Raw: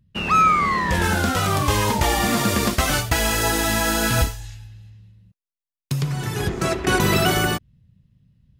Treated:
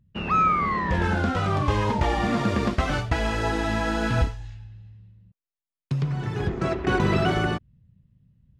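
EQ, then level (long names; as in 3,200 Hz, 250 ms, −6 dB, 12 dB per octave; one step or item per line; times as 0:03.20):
head-to-tape spacing loss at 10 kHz 25 dB
−1.5 dB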